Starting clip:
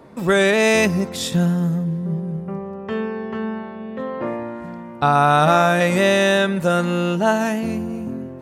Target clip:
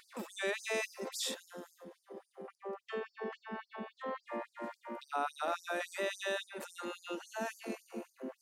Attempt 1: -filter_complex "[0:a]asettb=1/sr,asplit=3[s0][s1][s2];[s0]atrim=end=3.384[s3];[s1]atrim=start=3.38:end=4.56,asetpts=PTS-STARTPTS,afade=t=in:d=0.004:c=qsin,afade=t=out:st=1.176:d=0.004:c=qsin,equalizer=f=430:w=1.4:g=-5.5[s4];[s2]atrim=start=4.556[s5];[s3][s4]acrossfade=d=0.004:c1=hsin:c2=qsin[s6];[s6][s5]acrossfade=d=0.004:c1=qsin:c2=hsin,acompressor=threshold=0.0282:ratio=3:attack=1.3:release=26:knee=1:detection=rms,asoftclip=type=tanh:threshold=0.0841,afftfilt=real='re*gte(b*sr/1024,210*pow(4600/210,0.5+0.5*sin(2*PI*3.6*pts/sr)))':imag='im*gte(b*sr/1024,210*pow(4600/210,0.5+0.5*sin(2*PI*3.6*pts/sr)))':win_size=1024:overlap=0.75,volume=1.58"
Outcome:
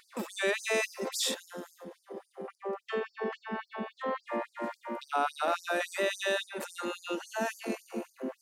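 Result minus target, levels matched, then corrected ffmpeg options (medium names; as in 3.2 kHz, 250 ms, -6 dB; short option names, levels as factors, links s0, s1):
compression: peak gain reduction -7 dB
-filter_complex "[0:a]asettb=1/sr,asplit=3[s0][s1][s2];[s0]atrim=end=3.384[s3];[s1]atrim=start=3.38:end=4.56,asetpts=PTS-STARTPTS,afade=t=in:d=0.004:c=qsin,afade=t=out:st=1.176:d=0.004:c=qsin,equalizer=f=430:w=1.4:g=-5.5[s4];[s2]atrim=start=4.556[s5];[s3][s4]acrossfade=d=0.004:c1=hsin:c2=qsin[s6];[s6][s5]acrossfade=d=0.004:c1=qsin:c2=hsin,acompressor=threshold=0.00841:ratio=3:attack=1.3:release=26:knee=1:detection=rms,asoftclip=type=tanh:threshold=0.0841,afftfilt=real='re*gte(b*sr/1024,210*pow(4600/210,0.5+0.5*sin(2*PI*3.6*pts/sr)))':imag='im*gte(b*sr/1024,210*pow(4600/210,0.5+0.5*sin(2*PI*3.6*pts/sr)))':win_size=1024:overlap=0.75,volume=1.58"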